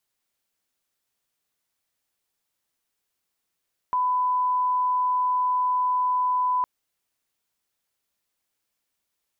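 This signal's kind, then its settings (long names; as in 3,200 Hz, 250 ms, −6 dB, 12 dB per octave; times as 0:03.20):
line-up tone −20 dBFS 2.71 s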